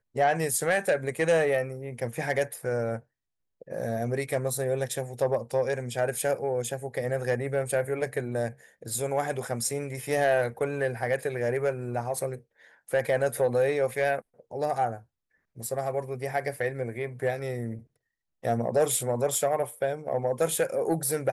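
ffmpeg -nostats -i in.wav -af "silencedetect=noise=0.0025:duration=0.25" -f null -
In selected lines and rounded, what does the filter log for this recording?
silence_start: 3.01
silence_end: 3.62 | silence_duration: 0.60
silence_start: 15.03
silence_end: 15.56 | silence_duration: 0.53
silence_start: 17.85
silence_end: 18.43 | silence_duration: 0.58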